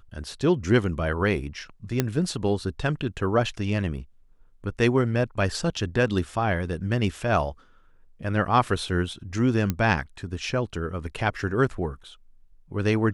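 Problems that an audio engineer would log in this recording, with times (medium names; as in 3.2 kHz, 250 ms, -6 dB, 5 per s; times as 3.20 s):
2.00 s: pop -7 dBFS
9.70 s: pop -11 dBFS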